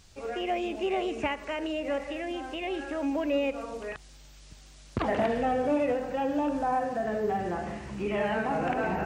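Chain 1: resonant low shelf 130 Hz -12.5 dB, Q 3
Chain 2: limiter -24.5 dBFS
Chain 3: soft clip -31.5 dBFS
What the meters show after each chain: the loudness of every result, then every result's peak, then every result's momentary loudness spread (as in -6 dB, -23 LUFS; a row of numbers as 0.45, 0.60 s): -28.5, -33.5, -35.5 LUFS; -13.0, -24.5, -31.5 dBFS; 8, 8, 7 LU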